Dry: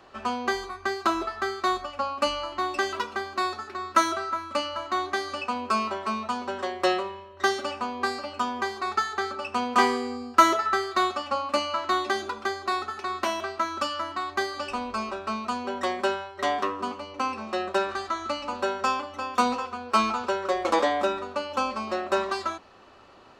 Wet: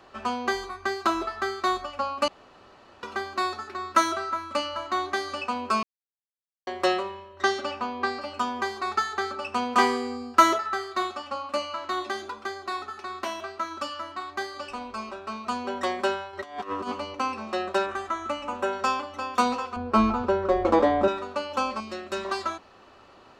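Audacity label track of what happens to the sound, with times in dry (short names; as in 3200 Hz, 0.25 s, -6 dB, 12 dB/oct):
2.280000	3.030000	room tone
5.830000	6.670000	mute
7.420000	8.200000	LPF 7400 Hz -> 4200 Hz
10.580000	15.470000	flange 1 Hz, delay 5 ms, depth 3.9 ms, regen +78%
16.330000	17.150000	negative-ratio compressor -32 dBFS, ratio -0.5
17.860000	18.730000	bell 4500 Hz -14 dB 0.46 oct
19.760000	21.080000	tilt -4 dB/oct
21.800000	22.250000	bell 820 Hz -12 dB 1.9 oct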